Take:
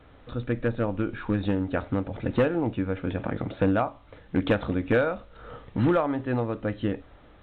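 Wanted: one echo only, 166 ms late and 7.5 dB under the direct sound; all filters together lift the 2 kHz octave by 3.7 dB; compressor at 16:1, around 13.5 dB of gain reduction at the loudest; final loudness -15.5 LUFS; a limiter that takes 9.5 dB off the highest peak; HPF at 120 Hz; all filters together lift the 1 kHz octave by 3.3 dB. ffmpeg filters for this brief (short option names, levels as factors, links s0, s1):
-af "highpass=120,equalizer=f=1000:t=o:g=3.5,equalizer=f=2000:t=o:g=3.5,acompressor=threshold=0.0316:ratio=16,alimiter=level_in=1.41:limit=0.0631:level=0:latency=1,volume=0.708,aecho=1:1:166:0.422,volume=15"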